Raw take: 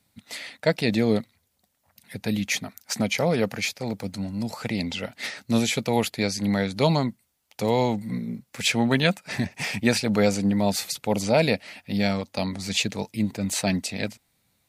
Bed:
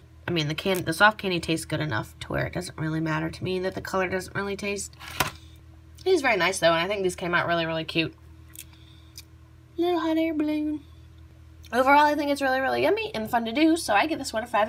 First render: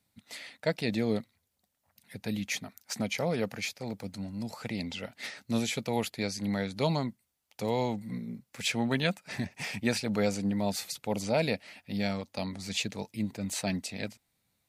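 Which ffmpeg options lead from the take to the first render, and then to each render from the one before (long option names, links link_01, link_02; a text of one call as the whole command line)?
ffmpeg -i in.wav -af "volume=-7.5dB" out.wav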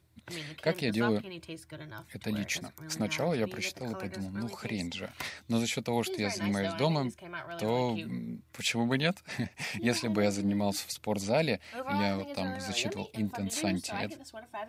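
ffmpeg -i in.wav -i bed.wav -filter_complex "[1:a]volume=-17dB[link_01];[0:a][link_01]amix=inputs=2:normalize=0" out.wav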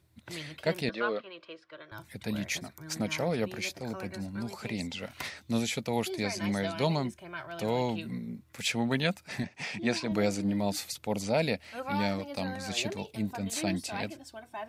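ffmpeg -i in.wav -filter_complex "[0:a]asettb=1/sr,asplit=3[link_01][link_02][link_03];[link_01]atrim=end=0.894[link_04];[link_02]atrim=start=0.89:end=1.92,asetpts=PTS-STARTPTS,afade=type=in:duration=0.004:curve=qsin,afade=type=out:start_time=1.026:duration=0.004:curve=qsin,highpass=460,equalizer=frequency=520:width_type=q:width=4:gain=6,equalizer=frequency=830:width_type=q:width=4:gain=-7,equalizer=frequency=1200:width_type=q:width=4:gain=9,equalizer=frequency=2200:width_type=q:width=4:gain=-3,equalizer=frequency=4100:width_type=q:width=4:gain=-3,lowpass=frequency=4400:width=0.5412,lowpass=frequency=4400:width=1.3066[link_05];[link_03]atrim=start=1.916[link_06];[link_04][link_05]acrossfade=duration=0.004:curve1=hsin:curve2=qsin[link_07];[link_07][link_06]acrossfade=duration=0.004:curve1=qsin:curve2=hsin,asettb=1/sr,asplit=3[link_08][link_09][link_10];[link_08]atrim=end=9.434[link_11];[link_09]atrim=start=9.43:end=10.12,asetpts=PTS-STARTPTS,afade=type=in:duration=0.004:curve=qsin,afade=type=out:start_time=0.686:duration=0.004:curve=qsin,highpass=130,lowpass=6400[link_12];[link_10]atrim=start=10.116[link_13];[link_11][link_12]acrossfade=duration=0.004:curve1=hsin:curve2=qsin[link_14];[link_14][link_13]acrossfade=duration=0.004:curve1=qsin:curve2=hsin" out.wav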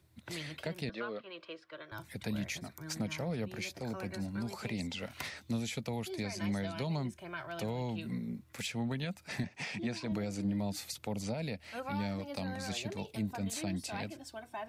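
ffmpeg -i in.wav -filter_complex "[0:a]alimiter=limit=-18dB:level=0:latency=1:release=176,acrossover=split=180[link_01][link_02];[link_02]acompressor=threshold=-37dB:ratio=6[link_03];[link_01][link_03]amix=inputs=2:normalize=0" out.wav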